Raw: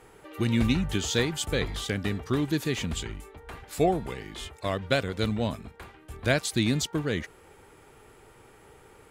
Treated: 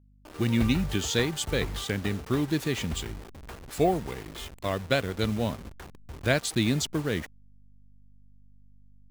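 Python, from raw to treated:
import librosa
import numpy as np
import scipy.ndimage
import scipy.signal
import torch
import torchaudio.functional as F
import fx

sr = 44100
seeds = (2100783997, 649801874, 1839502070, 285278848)

y = fx.delta_hold(x, sr, step_db=-38.5)
y = fx.add_hum(y, sr, base_hz=50, snr_db=29)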